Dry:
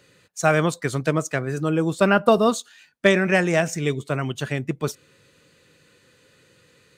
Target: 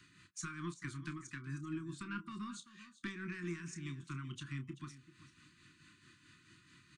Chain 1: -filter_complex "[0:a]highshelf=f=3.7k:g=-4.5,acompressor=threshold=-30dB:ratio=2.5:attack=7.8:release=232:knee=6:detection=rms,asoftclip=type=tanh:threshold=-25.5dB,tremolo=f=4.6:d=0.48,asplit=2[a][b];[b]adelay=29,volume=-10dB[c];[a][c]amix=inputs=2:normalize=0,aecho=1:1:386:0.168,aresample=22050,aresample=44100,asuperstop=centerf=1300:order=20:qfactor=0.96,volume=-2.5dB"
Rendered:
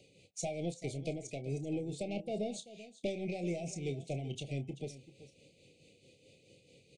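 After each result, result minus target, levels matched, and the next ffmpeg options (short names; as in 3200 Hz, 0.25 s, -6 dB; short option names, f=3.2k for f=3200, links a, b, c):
500 Hz band +10.5 dB; compressor: peak gain reduction -5.5 dB
-filter_complex "[0:a]highshelf=f=3.7k:g=-4.5,acompressor=threshold=-30dB:ratio=2.5:attack=7.8:release=232:knee=6:detection=rms,asoftclip=type=tanh:threshold=-25.5dB,tremolo=f=4.6:d=0.48,asplit=2[a][b];[b]adelay=29,volume=-10dB[c];[a][c]amix=inputs=2:normalize=0,aecho=1:1:386:0.168,aresample=22050,aresample=44100,asuperstop=centerf=600:order=20:qfactor=0.96,volume=-2.5dB"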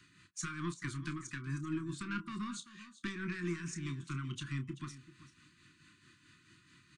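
compressor: peak gain reduction -5.5 dB
-filter_complex "[0:a]highshelf=f=3.7k:g=-4.5,acompressor=threshold=-39dB:ratio=2.5:attack=7.8:release=232:knee=6:detection=rms,asoftclip=type=tanh:threshold=-25.5dB,tremolo=f=4.6:d=0.48,asplit=2[a][b];[b]adelay=29,volume=-10dB[c];[a][c]amix=inputs=2:normalize=0,aecho=1:1:386:0.168,aresample=22050,aresample=44100,asuperstop=centerf=600:order=20:qfactor=0.96,volume=-2.5dB"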